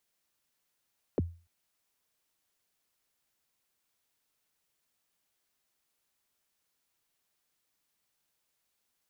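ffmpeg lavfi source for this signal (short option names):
-f lavfi -i "aevalsrc='0.0794*pow(10,-3*t/0.35)*sin(2*PI*(570*0.025/log(85/570)*(exp(log(85/570)*min(t,0.025)/0.025)-1)+85*max(t-0.025,0)))':d=0.29:s=44100"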